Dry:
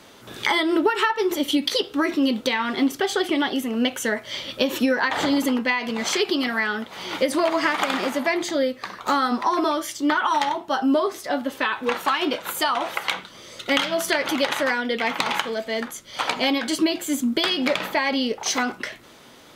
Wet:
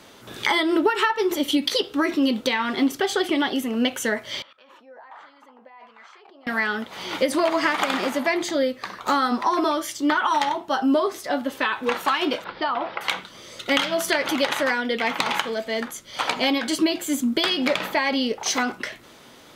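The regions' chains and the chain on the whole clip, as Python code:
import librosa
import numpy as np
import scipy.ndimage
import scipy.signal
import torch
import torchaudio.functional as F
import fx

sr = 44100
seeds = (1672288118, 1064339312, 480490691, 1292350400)

y = fx.chain(x, sr, fx.peak_eq(hz=320.0, db=-4.0, octaves=1.5),
    fx.level_steps(step_db=19),
    fx.wah_lfo(hz=1.4, low_hz=660.0, high_hz=1400.0, q=2.4), at=(4.42, 6.47))
y = fx.chain(y, sr, fx.lowpass(hz=1400.0, slope=6),
    fx.resample_bad(factor=4, down='none', up='filtered'), at=(12.44, 13.01))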